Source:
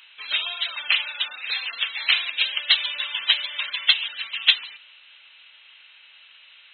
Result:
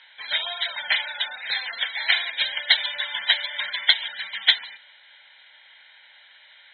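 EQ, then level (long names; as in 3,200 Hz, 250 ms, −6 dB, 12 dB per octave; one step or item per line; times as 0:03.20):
Bessel low-pass filter 2,400 Hz, order 2
phaser with its sweep stopped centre 1,800 Hz, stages 8
+8.5 dB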